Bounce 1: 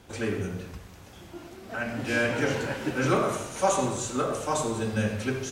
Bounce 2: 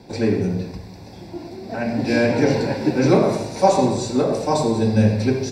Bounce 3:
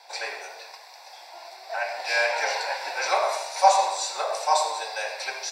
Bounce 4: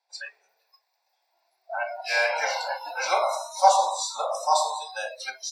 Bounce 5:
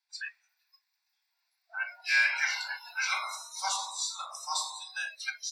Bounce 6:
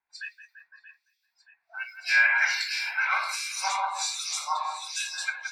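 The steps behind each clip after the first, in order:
reverberation RT60 0.35 s, pre-delay 3 ms, DRR 20.5 dB
steep high-pass 690 Hz 36 dB/octave; trim +2.5 dB
spectral noise reduction 29 dB
high-pass 1.3 kHz 24 dB/octave; dynamic bell 2 kHz, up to +5 dB, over -41 dBFS, Q 1.3; trim -3 dB
two-band feedback delay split 2.3 kHz, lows 170 ms, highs 627 ms, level -5.5 dB; harmonic tremolo 1.3 Hz, depth 100%, crossover 2.3 kHz; tape noise reduction on one side only decoder only; trim +8.5 dB

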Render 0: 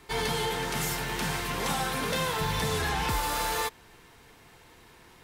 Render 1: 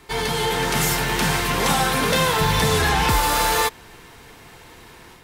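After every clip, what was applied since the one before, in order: level rider gain up to 5 dB; trim +5 dB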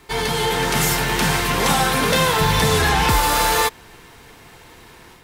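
in parallel at -11.5 dB: crossover distortion -38.5 dBFS; on the sum: bit crusher 11-bit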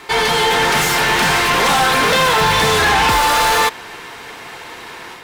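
overdrive pedal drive 21 dB, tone 3.5 kHz, clips at -6.5 dBFS

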